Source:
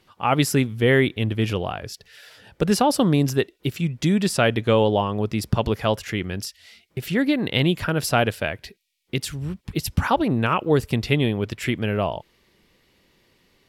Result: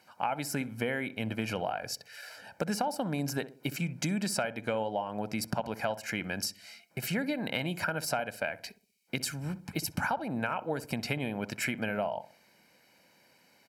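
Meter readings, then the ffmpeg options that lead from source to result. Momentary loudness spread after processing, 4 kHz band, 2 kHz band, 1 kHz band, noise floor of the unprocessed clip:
7 LU, −10.0 dB, −7.5 dB, −9.0 dB, −65 dBFS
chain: -filter_complex "[0:a]highpass=260,deesser=0.45,equalizer=frequency=3400:width=4.9:gain=-15,aecho=1:1:1.3:0.68,acompressor=threshold=-28dB:ratio=12,asplit=2[link_01][link_02];[link_02]adelay=63,lowpass=frequency=820:poles=1,volume=-12.5dB,asplit=2[link_03][link_04];[link_04]adelay=63,lowpass=frequency=820:poles=1,volume=0.46,asplit=2[link_05][link_06];[link_06]adelay=63,lowpass=frequency=820:poles=1,volume=0.46,asplit=2[link_07][link_08];[link_08]adelay=63,lowpass=frequency=820:poles=1,volume=0.46,asplit=2[link_09][link_10];[link_10]adelay=63,lowpass=frequency=820:poles=1,volume=0.46[link_11];[link_01][link_03][link_05][link_07][link_09][link_11]amix=inputs=6:normalize=0"

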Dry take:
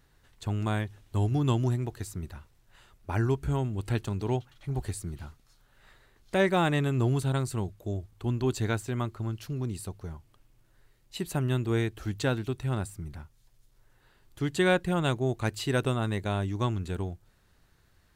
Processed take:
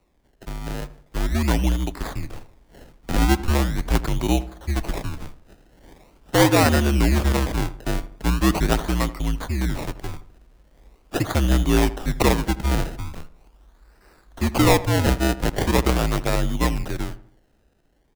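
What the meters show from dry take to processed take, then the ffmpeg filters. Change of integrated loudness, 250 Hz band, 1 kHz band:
+7.5 dB, +8.0 dB, +9.0 dB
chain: -filter_complex "[0:a]equalizer=frequency=4400:width_type=o:width=0.98:gain=10.5,dynaudnorm=framelen=210:gausssize=13:maxgain=11.5dB,acrusher=samples=26:mix=1:aa=0.000001:lfo=1:lforange=26:lforate=0.41,afreqshift=-64,asplit=2[link_01][link_02];[link_02]adelay=81,lowpass=frequency=1800:poles=1,volume=-15.5dB,asplit=2[link_03][link_04];[link_04]adelay=81,lowpass=frequency=1800:poles=1,volume=0.45,asplit=2[link_05][link_06];[link_06]adelay=81,lowpass=frequency=1800:poles=1,volume=0.45,asplit=2[link_07][link_08];[link_08]adelay=81,lowpass=frequency=1800:poles=1,volume=0.45[link_09];[link_03][link_05][link_07][link_09]amix=inputs=4:normalize=0[link_10];[link_01][link_10]amix=inputs=2:normalize=0,volume=-2dB"

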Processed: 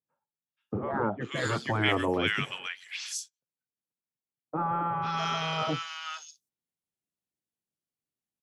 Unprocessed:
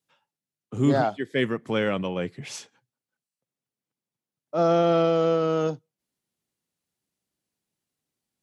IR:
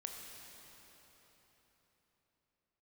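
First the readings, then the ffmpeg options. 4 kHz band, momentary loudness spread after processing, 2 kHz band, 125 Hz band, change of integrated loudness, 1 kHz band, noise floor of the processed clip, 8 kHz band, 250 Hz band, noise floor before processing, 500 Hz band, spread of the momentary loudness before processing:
+4.0 dB, 12 LU, +3.0 dB, −4.5 dB, −6.5 dB, −0.5 dB, below −85 dBFS, +4.5 dB, −7.5 dB, below −85 dBFS, −10.5 dB, 17 LU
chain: -filter_complex "[0:a]agate=range=-17dB:threshold=-45dB:ratio=16:detection=peak,afftfilt=real='re*lt(hypot(re,im),0.2)':imag='im*lt(hypot(re,im),0.2)':win_size=1024:overlap=0.75,acrossover=split=1400|4700[link_01][link_02][link_03];[link_02]adelay=480[link_04];[link_03]adelay=610[link_05];[link_01][link_04][link_05]amix=inputs=3:normalize=0,volume=6dB"

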